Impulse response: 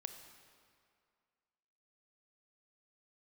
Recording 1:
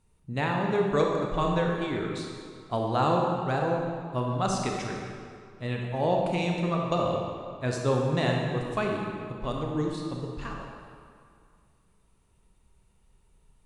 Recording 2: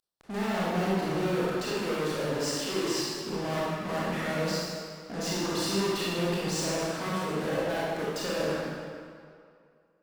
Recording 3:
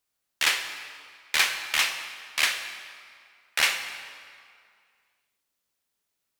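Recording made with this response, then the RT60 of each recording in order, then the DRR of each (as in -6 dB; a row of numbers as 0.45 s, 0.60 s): 3; 2.3 s, 2.3 s, 2.2 s; -0.5 dB, -7.5 dB, 7.0 dB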